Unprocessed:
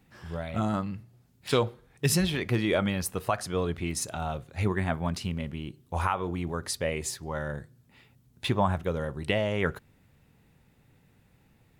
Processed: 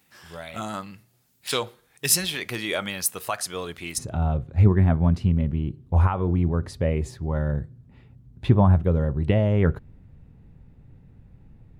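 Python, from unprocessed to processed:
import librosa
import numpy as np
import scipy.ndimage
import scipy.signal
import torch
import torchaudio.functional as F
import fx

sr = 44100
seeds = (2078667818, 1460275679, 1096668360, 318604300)

y = fx.tilt_eq(x, sr, slope=fx.steps((0.0, 3.0), (3.97, -4.0)))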